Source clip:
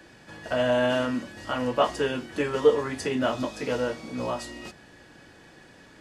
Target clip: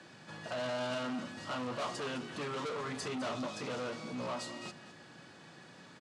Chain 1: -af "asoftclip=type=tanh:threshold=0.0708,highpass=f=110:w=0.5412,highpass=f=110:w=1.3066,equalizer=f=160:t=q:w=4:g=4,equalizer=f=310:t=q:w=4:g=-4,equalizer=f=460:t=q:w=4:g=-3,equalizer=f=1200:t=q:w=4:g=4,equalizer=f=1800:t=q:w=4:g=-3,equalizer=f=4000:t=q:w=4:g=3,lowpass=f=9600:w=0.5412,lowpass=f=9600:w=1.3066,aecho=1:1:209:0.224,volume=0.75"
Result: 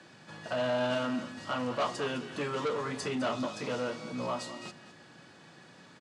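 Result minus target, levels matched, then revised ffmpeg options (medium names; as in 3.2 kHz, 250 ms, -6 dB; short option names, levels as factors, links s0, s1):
saturation: distortion -5 dB
-af "asoftclip=type=tanh:threshold=0.0251,highpass=f=110:w=0.5412,highpass=f=110:w=1.3066,equalizer=f=160:t=q:w=4:g=4,equalizer=f=310:t=q:w=4:g=-4,equalizer=f=460:t=q:w=4:g=-3,equalizer=f=1200:t=q:w=4:g=4,equalizer=f=1800:t=q:w=4:g=-3,equalizer=f=4000:t=q:w=4:g=3,lowpass=f=9600:w=0.5412,lowpass=f=9600:w=1.3066,aecho=1:1:209:0.224,volume=0.75"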